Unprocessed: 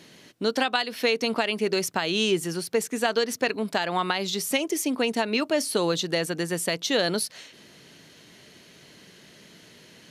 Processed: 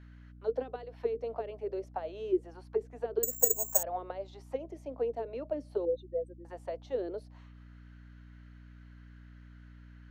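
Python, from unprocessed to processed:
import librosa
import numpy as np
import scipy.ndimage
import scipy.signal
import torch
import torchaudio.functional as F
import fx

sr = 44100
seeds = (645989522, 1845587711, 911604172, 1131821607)

y = fx.spec_expand(x, sr, power=3.9, at=(5.85, 6.45))
y = scipy.signal.sosfilt(scipy.signal.ellip(4, 1.0, 40, 240.0, 'highpass', fs=sr, output='sos'), y)
y = fx.auto_wah(y, sr, base_hz=370.0, top_hz=1500.0, q=5.1, full_db=-19.5, direction='down')
y = fx.add_hum(y, sr, base_hz=60, snr_db=14)
y = fx.resample_bad(y, sr, factor=6, down='none', up='zero_stuff', at=(3.23, 3.83))
y = y * 10.0 ** (-1.5 / 20.0)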